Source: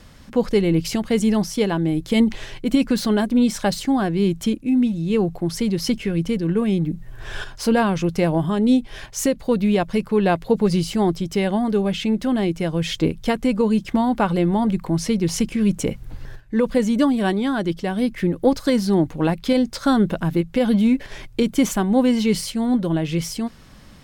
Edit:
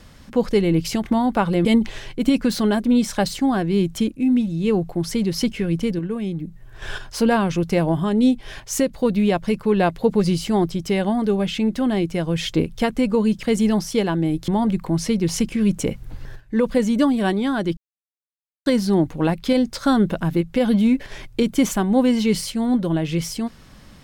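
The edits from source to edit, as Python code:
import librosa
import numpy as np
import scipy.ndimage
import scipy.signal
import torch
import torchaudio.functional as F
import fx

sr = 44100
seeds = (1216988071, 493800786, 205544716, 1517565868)

y = fx.edit(x, sr, fx.swap(start_s=1.06, length_s=1.05, other_s=13.89, other_length_s=0.59),
    fx.clip_gain(start_s=6.45, length_s=0.83, db=-6.0),
    fx.silence(start_s=17.77, length_s=0.89), tone=tone)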